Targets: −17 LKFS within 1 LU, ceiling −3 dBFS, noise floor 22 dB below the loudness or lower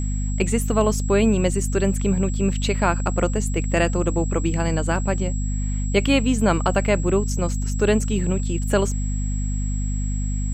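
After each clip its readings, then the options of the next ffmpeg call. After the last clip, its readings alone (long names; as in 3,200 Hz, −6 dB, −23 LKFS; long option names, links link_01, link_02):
mains hum 50 Hz; hum harmonics up to 250 Hz; level of the hum −21 dBFS; interfering tone 7,700 Hz; level of the tone −36 dBFS; integrated loudness −22.0 LKFS; sample peak −5.0 dBFS; target loudness −17.0 LKFS
→ -af "bandreject=frequency=50:width_type=h:width=6,bandreject=frequency=100:width_type=h:width=6,bandreject=frequency=150:width_type=h:width=6,bandreject=frequency=200:width_type=h:width=6,bandreject=frequency=250:width_type=h:width=6"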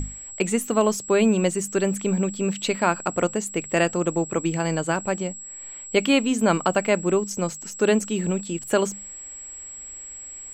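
mains hum none found; interfering tone 7,700 Hz; level of the tone −36 dBFS
→ -af "bandreject=frequency=7700:width=30"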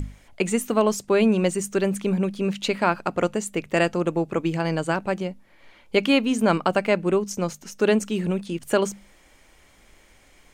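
interfering tone none found; integrated loudness −23.5 LKFS; sample peak −6.0 dBFS; target loudness −17.0 LKFS
→ -af "volume=6.5dB,alimiter=limit=-3dB:level=0:latency=1"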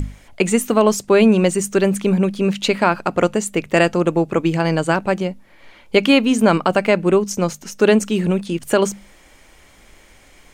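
integrated loudness −17.5 LKFS; sample peak −3.0 dBFS; background noise floor −49 dBFS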